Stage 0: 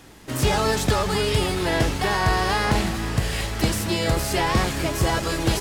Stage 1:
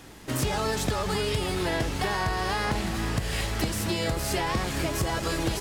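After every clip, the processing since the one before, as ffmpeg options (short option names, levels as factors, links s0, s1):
-af "acompressor=threshold=0.0631:ratio=6"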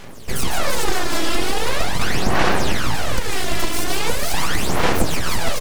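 -af "aecho=1:1:150|339:0.562|0.562,aeval=exprs='abs(val(0))':c=same,aphaser=in_gain=1:out_gain=1:delay=3:decay=0.61:speed=0.41:type=sinusoidal,volume=1.78"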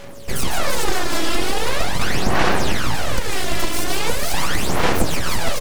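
-af "aeval=exprs='val(0)+0.00891*sin(2*PI*560*n/s)':c=same"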